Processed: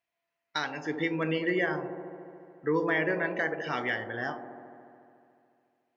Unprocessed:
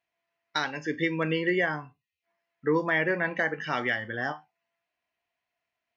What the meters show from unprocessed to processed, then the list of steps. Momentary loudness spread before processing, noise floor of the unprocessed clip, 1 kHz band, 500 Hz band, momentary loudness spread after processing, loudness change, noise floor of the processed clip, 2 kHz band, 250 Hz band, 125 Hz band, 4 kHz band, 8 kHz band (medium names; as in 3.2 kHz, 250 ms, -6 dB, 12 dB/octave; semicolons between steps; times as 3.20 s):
9 LU, under -85 dBFS, -2.0 dB, -1.0 dB, 16 LU, -2.5 dB, -85 dBFS, -3.0 dB, -1.0 dB, -2.5 dB, -3.0 dB, no reading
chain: feedback echo behind a band-pass 72 ms, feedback 82%, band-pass 410 Hz, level -7 dB; trim -3 dB